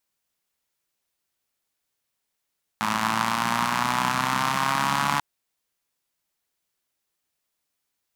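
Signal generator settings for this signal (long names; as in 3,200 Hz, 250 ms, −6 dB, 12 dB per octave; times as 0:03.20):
pulse-train model of a four-cylinder engine, changing speed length 2.39 s, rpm 3,200, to 4,300, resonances 200/1,000 Hz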